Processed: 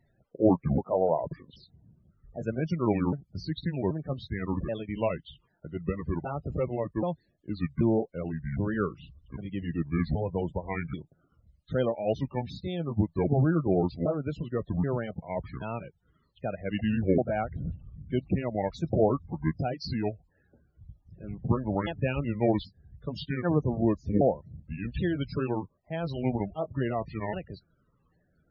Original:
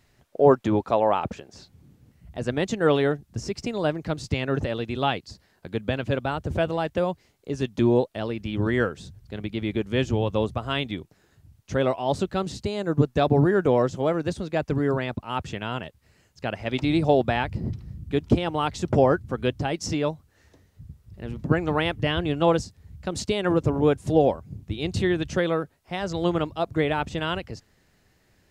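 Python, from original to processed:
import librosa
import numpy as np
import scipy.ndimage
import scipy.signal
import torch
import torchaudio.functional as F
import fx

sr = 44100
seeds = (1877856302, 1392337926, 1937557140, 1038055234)

y = fx.pitch_ramps(x, sr, semitones=-8.5, every_ms=781)
y = fx.spec_topn(y, sr, count=32)
y = fx.graphic_eq_15(y, sr, hz=(160, 630, 4000), db=(8, 6, 7))
y = F.gain(torch.from_numpy(y), -6.5).numpy()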